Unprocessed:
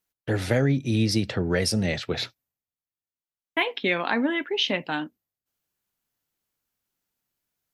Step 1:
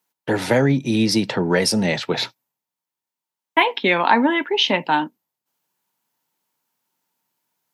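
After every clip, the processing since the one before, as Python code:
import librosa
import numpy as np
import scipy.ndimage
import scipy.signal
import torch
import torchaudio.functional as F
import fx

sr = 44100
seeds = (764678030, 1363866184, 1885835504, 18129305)

y = scipy.signal.sosfilt(scipy.signal.butter(4, 140.0, 'highpass', fs=sr, output='sos'), x)
y = fx.peak_eq(y, sr, hz=920.0, db=12.5, octaves=0.28)
y = F.gain(torch.from_numpy(y), 6.0).numpy()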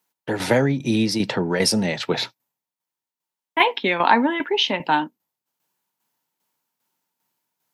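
y = fx.tremolo_shape(x, sr, shape='saw_down', hz=2.5, depth_pct=60)
y = F.gain(torch.from_numpy(y), 1.5).numpy()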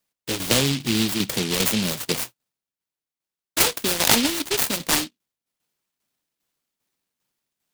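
y = fx.noise_mod_delay(x, sr, seeds[0], noise_hz=3400.0, depth_ms=0.34)
y = F.gain(torch.from_numpy(y), -2.0).numpy()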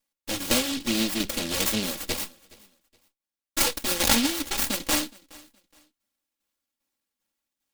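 y = fx.lower_of_two(x, sr, delay_ms=3.6)
y = fx.echo_feedback(y, sr, ms=419, feedback_pct=28, wet_db=-23.5)
y = F.gain(torch.from_numpy(y), -2.0).numpy()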